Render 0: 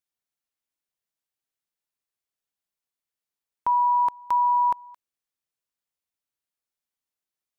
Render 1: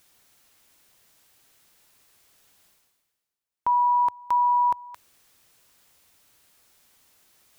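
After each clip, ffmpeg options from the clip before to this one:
-af "equalizer=f=90:t=o:w=0.61:g=3.5,areverse,acompressor=mode=upward:threshold=0.0126:ratio=2.5,areverse"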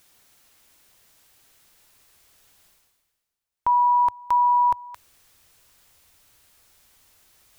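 -af "asubboost=boost=2.5:cutoff=110,volume=1.33"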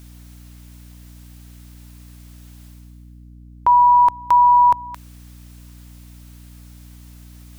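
-af "aeval=exprs='val(0)+0.00447*(sin(2*PI*60*n/s)+sin(2*PI*2*60*n/s)/2+sin(2*PI*3*60*n/s)/3+sin(2*PI*4*60*n/s)/4+sin(2*PI*5*60*n/s)/5)':c=same,volume=2.11"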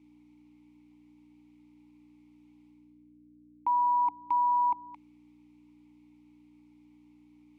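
-filter_complex "[0:a]asplit=3[s0][s1][s2];[s0]bandpass=f=300:t=q:w=8,volume=1[s3];[s1]bandpass=f=870:t=q:w=8,volume=0.501[s4];[s2]bandpass=f=2240:t=q:w=8,volume=0.355[s5];[s3][s4][s5]amix=inputs=3:normalize=0,volume=0.794"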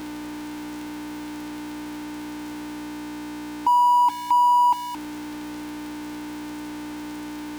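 -af "aeval=exprs='val(0)+0.5*0.015*sgn(val(0))':c=same,volume=2.37"

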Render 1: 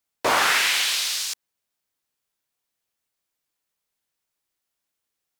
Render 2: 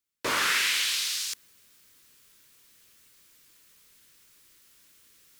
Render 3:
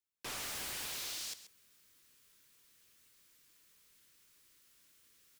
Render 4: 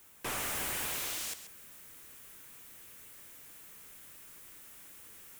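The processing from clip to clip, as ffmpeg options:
-af "areverse,acompressor=mode=upward:threshold=0.0224:ratio=2.5,areverse,equalizer=f=750:w=2.1:g=-14.5,volume=0.631"
-af "aeval=exprs='0.0355*(abs(mod(val(0)/0.0355+3,4)-2)-1)':c=same,aecho=1:1:133:0.211,volume=0.398"
-af "aeval=exprs='val(0)+0.5*0.00158*sgn(val(0))':c=same,equalizer=f=4600:w=1.2:g=-10,volume=2.37"

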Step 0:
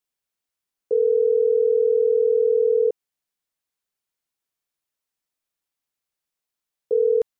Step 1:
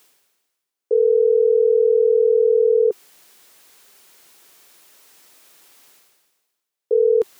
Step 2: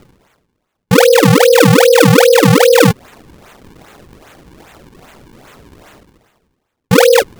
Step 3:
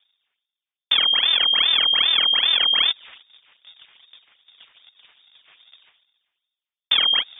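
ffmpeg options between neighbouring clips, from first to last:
-af "highpass=f=300:p=1,equalizer=f=390:t=o:w=0.59:g=5,areverse,acompressor=mode=upward:threshold=0.0447:ratio=2.5,areverse,volume=1.19"
-filter_complex "[0:a]asplit=2[s0][s1];[s1]alimiter=limit=0.126:level=0:latency=1:release=14,volume=0.891[s2];[s0][s2]amix=inputs=2:normalize=0,afreqshift=35,acrusher=samples=39:mix=1:aa=0.000001:lfo=1:lforange=62.4:lforate=2.5,volume=1.88"
-af "agate=range=0.112:threshold=0.0126:ratio=16:detection=peak,acompressor=threshold=0.2:ratio=6,lowpass=f=3100:t=q:w=0.5098,lowpass=f=3100:t=q:w=0.6013,lowpass=f=3100:t=q:w=0.9,lowpass=f=3100:t=q:w=2.563,afreqshift=-3700,volume=0.75"

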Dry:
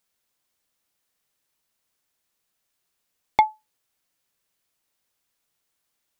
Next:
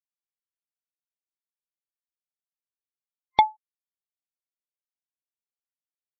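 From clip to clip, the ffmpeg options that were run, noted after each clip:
-af "afftfilt=real='re*gte(hypot(re,im),0.0178)':imag='im*gte(hypot(re,im),0.0178)':win_size=1024:overlap=0.75,superequalizer=10b=0.631:12b=0.708:13b=2.24"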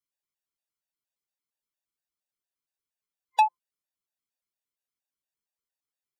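-af "asoftclip=type=tanh:threshold=0.106,afftfilt=real='re*gt(sin(2*PI*4.3*pts/sr)*(1-2*mod(floor(b*sr/1024/490),2)),0)':imag='im*gt(sin(2*PI*4.3*pts/sr)*(1-2*mod(floor(b*sr/1024/490),2)),0)':win_size=1024:overlap=0.75,volume=1.78"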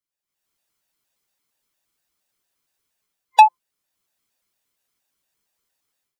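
-af "dynaudnorm=f=250:g=3:m=5.96"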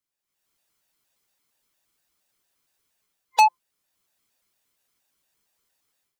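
-af "asoftclip=type=tanh:threshold=0.2,volume=1.26"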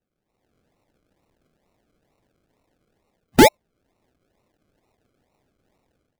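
-af "acrusher=samples=38:mix=1:aa=0.000001:lfo=1:lforange=22.8:lforate=2.2,volume=1.78"

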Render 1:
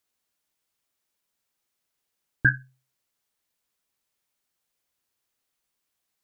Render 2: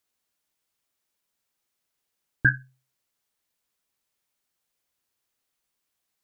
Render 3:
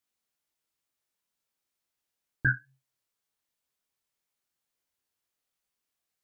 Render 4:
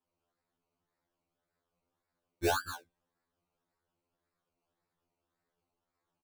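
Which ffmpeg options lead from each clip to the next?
-af anull
-af "flanger=delay=19.5:depth=7.6:speed=2.1,volume=0.794"
-af "aecho=1:1:75.8|236.2:0.501|0.282,acrusher=samples=20:mix=1:aa=0.000001:lfo=1:lforange=12:lforate=1.8,afftfilt=real='re*2*eq(mod(b,4),0)':imag='im*2*eq(mod(b,4),0)':win_size=2048:overlap=0.75"

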